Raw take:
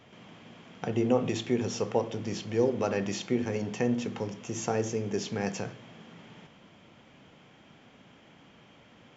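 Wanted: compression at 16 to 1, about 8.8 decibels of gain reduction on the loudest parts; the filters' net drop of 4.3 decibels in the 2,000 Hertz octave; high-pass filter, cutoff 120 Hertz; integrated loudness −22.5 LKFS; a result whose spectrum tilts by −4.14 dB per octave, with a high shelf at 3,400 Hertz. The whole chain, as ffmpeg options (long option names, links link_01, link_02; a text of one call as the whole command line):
ffmpeg -i in.wav -af "highpass=120,equalizer=frequency=2000:width_type=o:gain=-8,highshelf=frequency=3400:gain=7,acompressor=threshold=-29dB:ratio=16,volume=13dB" out.wav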